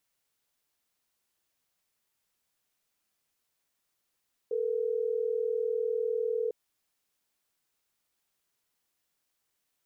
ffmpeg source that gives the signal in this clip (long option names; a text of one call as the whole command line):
ffmpeg -f lavfi -i "aevalsrc='0.0316*(sin(2*PI*440*t)+sin(2*PI*480*t))*clip(min(mod(t,6),2-mod(t,6))/0.005,0,1)':duration=3.12:sample_rate=44100" out.wav